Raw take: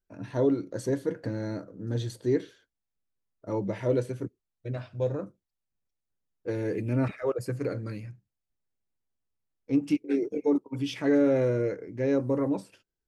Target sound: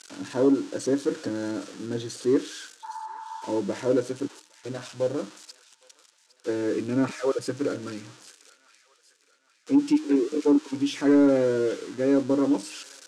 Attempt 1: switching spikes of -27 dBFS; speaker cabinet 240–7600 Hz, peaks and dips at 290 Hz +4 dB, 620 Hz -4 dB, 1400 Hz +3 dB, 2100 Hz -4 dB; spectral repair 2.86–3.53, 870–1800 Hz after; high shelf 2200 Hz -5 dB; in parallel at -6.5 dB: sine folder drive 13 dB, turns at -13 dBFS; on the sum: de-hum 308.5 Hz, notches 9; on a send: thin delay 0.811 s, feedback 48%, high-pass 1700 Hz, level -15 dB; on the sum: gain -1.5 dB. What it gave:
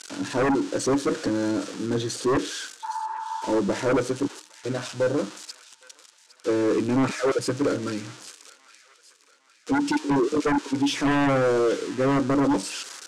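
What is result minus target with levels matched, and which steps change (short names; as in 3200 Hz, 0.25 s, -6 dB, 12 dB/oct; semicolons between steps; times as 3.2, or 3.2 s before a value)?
sine folder: distortion +21 dB
change: sine folder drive 3 dB, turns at -13 dBFS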